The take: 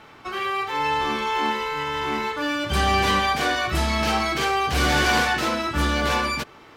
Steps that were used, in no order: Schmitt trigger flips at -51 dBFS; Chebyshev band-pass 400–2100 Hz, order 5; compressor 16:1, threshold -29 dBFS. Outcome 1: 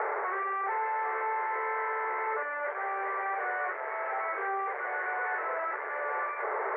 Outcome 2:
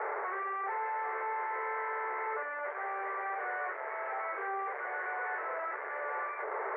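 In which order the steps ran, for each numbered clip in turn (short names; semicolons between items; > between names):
Schmitt trigger > compressor > Chebyshev band-pass; compressor > Schmitt trigger > Chebyshev band-pass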